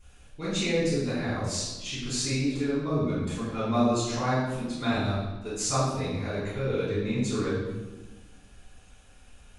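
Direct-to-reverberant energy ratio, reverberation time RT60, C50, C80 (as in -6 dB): -12.5 dB, 1.2 s, -0.5 dB, 2.5 dB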